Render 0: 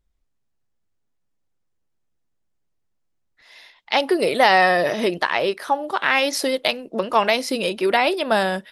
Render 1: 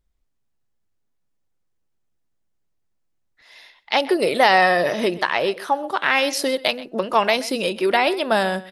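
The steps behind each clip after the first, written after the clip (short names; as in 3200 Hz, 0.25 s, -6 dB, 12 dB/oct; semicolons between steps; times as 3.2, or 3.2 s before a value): outdoor echo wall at 22 m, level -18 dB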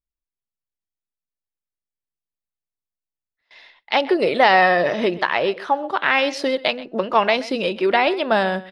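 LPF 3900 Hz 12 dB/oct; gate with hold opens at -41 dBFS; gain +1 dB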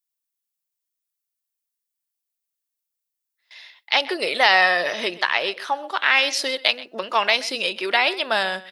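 tilt +4.5 dB/oct; gain -3 dB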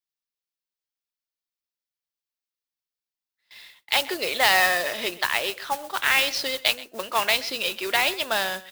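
resonant high shelf 6300 Hz -7.5 dB, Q 1.5; modulation noise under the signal 10 dB; gain -4 dB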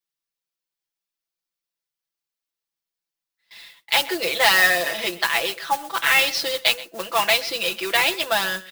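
comb 6 ms, depth 100%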